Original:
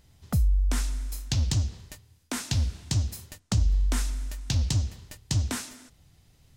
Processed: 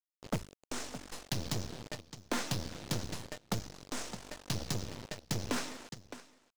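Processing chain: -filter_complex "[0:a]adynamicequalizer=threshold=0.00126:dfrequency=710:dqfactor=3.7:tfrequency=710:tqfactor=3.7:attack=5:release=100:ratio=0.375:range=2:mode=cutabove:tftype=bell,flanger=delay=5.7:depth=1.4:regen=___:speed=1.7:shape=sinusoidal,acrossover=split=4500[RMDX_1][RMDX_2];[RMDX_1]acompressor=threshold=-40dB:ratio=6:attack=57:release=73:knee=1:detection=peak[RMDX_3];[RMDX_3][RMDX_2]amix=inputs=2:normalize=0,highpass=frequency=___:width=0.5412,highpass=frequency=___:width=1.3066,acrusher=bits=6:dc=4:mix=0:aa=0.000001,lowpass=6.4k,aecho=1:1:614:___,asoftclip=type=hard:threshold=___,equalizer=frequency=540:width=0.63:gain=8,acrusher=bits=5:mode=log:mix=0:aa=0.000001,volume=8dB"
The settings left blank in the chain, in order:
-50, 92, 92, 0.106, -37.5dB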